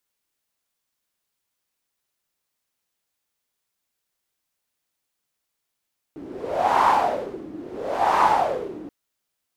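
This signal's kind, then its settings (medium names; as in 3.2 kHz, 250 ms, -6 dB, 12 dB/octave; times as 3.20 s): wind-like swept noise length 2.73 s, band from 300 Hz, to 940 Hz, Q 6.1, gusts 2, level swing 19.5 dB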